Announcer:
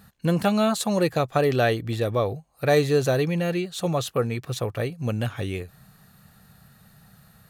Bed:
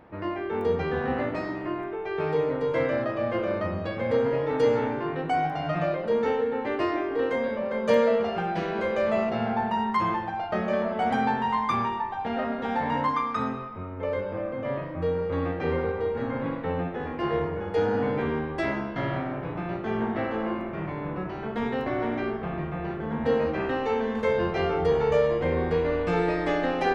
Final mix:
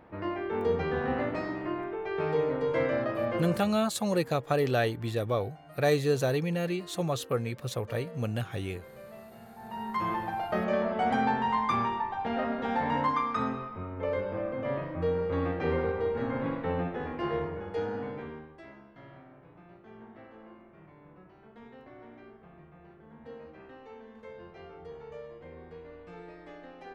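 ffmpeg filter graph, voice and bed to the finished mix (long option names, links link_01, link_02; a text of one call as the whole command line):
ffmpeg -i stem1.wav -i stem2.wav -filter_complex "[0:a]adelay=3150,volume=-5.5dB[link_01];[1:a]volume=18.5dB,afade=type=out:start_time=3.29:duration=0.49:silence=0.0944061,afade=type=in:start_time=9.58:duration=0.71:silence=0.0891251,afade=type=out:start_time=16.81:duration=1.78:silence=0.1[link_02];[link_01][link_02]amix=inputs=2:normalize=0" out.wav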